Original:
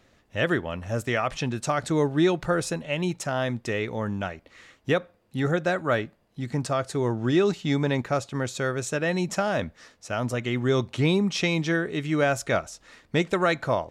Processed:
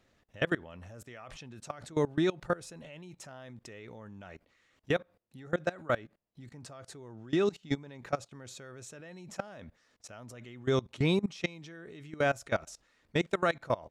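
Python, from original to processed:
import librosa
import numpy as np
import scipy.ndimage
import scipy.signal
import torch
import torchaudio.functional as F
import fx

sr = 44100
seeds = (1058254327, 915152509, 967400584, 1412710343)

y = fx.level_steps(x, sr, step_db=22)
y = y * librosa.db_to_amplitude(-3.5)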